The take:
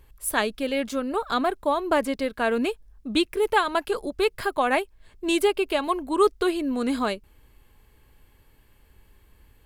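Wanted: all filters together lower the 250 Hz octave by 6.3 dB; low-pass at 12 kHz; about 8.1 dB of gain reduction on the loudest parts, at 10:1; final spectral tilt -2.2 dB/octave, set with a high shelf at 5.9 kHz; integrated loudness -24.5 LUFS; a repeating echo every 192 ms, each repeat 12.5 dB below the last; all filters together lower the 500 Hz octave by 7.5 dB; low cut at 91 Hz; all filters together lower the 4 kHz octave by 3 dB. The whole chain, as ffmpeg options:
-af "highpass=91,lowpass=12000,equalizer=f=250:t=o:g=-4.5,equalizer=f=500:t=o:g=-8.5,equalizer=f=4000:t=o:g=-5.5,highshelf=f=5900:g=5.5,acompressor=threshold=0.0447:ratio=10,aecho=1:1:192|384|576:0.237|0.0569|0.0137,volume=2.66"

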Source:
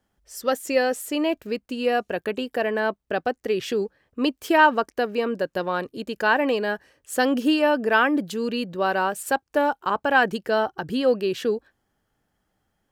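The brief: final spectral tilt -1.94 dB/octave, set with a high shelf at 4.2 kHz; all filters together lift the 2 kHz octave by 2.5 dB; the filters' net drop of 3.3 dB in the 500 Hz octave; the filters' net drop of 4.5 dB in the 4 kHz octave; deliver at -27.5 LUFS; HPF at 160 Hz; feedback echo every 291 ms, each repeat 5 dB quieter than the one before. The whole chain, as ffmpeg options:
-af "highpass=160,equalizer=f=500:t=o:g=-4,equalizer=f=2000:t=o:g=6.5,equalizer=f=4000:t=o:g=-7.5,highshelf=f=4200:g=-6.5,aecho=1:1:291|582|873|1164|1455|1746|2037:0.562|0.315|0.176|0.0988|0.0553|0.031|0.0173,volume=0.596"

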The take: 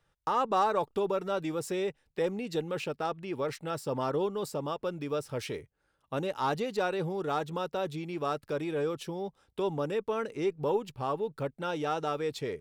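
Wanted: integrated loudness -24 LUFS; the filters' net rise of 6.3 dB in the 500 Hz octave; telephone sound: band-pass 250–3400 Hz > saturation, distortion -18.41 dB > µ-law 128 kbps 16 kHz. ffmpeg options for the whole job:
-af "highpass=250,lowpass=3400,equalizer=f=500:t=o:g=8,asoftclip=threshold=0.119,volume=1.88" -ar 16000 -c:a pcm_mulaw

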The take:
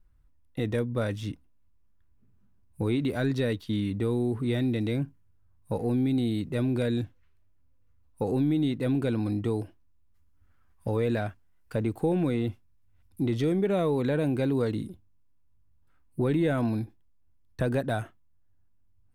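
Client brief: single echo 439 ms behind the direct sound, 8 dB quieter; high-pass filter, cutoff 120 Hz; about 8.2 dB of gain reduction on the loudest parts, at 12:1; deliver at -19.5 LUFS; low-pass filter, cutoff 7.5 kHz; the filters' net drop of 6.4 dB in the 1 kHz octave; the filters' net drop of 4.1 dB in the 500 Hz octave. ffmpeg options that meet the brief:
-af "highpass=120,lowpass=7500,equalizer=f=500:t=o:g=-3.5,equalizer=f=1000:t=o:g=-8,acompressor=threshold=0.0251:ratio=12,aecho=1:1:439:0.398,volume=8.41"

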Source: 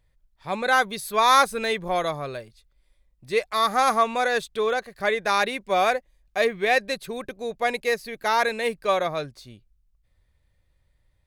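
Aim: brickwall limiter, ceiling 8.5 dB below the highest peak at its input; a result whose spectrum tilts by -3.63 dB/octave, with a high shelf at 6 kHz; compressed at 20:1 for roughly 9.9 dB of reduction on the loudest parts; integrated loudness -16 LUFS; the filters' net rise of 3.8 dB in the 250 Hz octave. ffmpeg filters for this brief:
-af "equalizer=f=250:t=o:g=4.5,highshelf=f=6000:g=4.5,acompressor=threshold=0.0891:ratio=20,volume=6.31,alimiter=limit=0.531:level=0:latency=1"

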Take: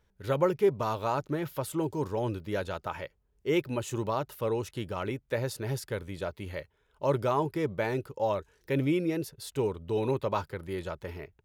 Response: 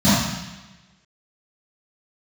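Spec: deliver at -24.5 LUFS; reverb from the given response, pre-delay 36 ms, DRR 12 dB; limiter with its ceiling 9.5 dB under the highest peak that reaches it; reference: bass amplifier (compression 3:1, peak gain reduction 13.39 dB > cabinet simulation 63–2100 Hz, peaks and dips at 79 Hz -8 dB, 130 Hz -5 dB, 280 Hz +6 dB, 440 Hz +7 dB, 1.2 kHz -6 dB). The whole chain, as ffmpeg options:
-filter_complex "[0:a]alimiter=limit=0.075:level=0:latency=1,asplit=2[s0][s1];[1:a]atrim=start_sample=2205,adelay=36[s2];[s1][s2]afir=irnorm=-1:irlink=0,volume=0.0188[s3];[s0][s3]amix=inputs=2:normalize=0,acompressor=threshold=0.00891:ratio=3,highpass=f=63:w=0.5412,highpass=f=63:w=1.3066,equalizer=f=79:t=q:w=4:g=-8,equalizer=f=130:t=q:w=4:g=-5,equalizer=f=280:t=q:w=4:g=6,equalizer=f=440:t=q:w=4:g=7,equalizer=f=1200:t=q:w=4:g=-6,lowpass=f=2100:w=0.5412,lowpass=f=2100:w=1.3066,volume=5.96"

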